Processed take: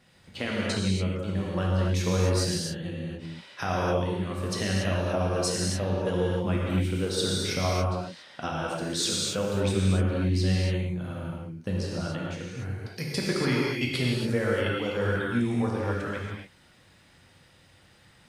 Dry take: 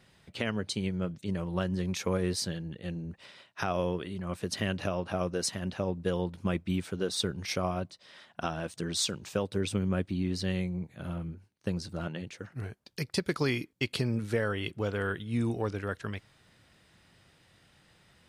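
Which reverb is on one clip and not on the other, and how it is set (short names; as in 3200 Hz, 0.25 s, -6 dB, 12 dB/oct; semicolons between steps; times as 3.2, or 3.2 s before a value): non-linear reverb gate 0.31 s flat, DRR -4.5 dB; gain -1 dB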